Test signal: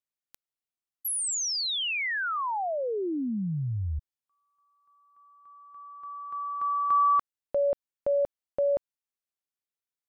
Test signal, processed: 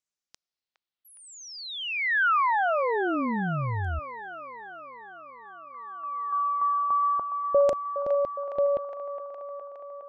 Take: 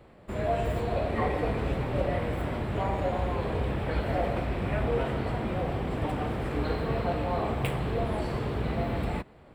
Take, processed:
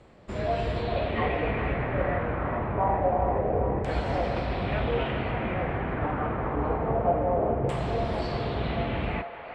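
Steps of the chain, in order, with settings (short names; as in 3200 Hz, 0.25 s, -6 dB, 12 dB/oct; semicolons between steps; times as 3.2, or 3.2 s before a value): LFO low-pass saw down 0.26 Hz 470–7300 Hz; band-limited delay 0.413 s, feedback 71%, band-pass 1200 Hz, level -7.5 dB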